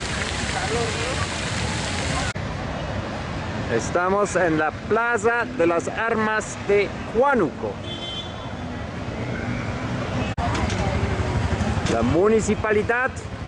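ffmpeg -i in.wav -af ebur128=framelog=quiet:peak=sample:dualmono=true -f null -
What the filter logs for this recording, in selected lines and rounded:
Integrated loudness:
  I:         -20.3 LUFS
  Threshold: -30.3 LUFS
Loudness range:
  LRA:         4.8 LU
  Threshold: -40.5 LUFS
  LRA low:   -23.2 LUFS
  LRA high:  -18.4 LUFS
Sample peak:
  Peak:       -7.1 dBFS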